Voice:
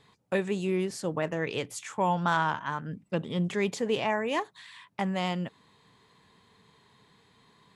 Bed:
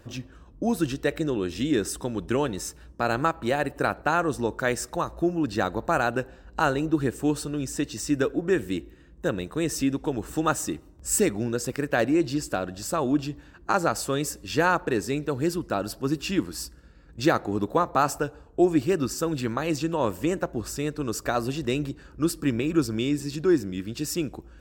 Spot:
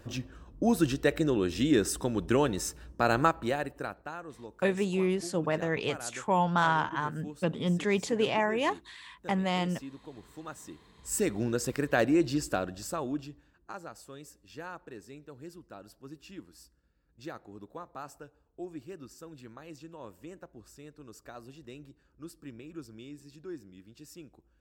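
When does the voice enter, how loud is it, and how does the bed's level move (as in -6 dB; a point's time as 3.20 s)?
4.30 s, +0.5 dB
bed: 3.27 s -0.5 dB
4.21 s -19 dB
10.56 s -19 dB
11.44 s -2.5 dB
12.58 s -2.5 dB
13.84 s -20.5 dB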